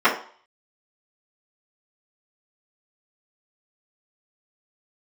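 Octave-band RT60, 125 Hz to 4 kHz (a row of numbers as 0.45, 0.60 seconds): 0.30, 0.40, 0.45, 0.50, 0.45, 0.45 seconds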